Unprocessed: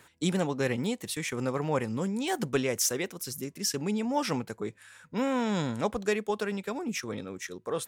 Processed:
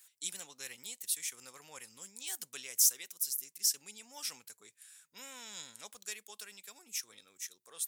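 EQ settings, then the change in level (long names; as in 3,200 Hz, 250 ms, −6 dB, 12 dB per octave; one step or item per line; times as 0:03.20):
first-order pre-emphasis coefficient 0.97
high-shelf EQ 2,500 Hz +9 dB
−6.0 dB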